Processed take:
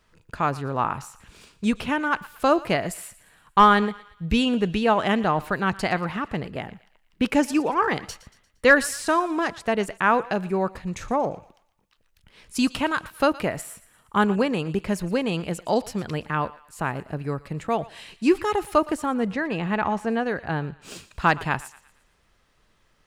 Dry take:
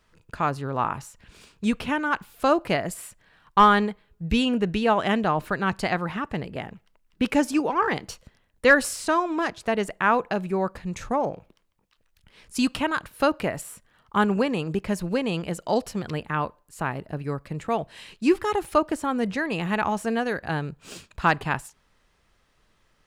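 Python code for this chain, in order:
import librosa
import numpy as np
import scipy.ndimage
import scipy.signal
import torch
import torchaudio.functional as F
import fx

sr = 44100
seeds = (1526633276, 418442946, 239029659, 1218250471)

p1 = fx.lowpass(x, sr, hz=2500.0, slope=6, at=(19.06, 20.82))
p2 = p1 + fx.echo_thinned(p1, sr, ms=116, feedback_pct=48, hz=920.0, wet_db=-17, dry=0)
y = p2 * librosa.db_to_amplitude(1.0)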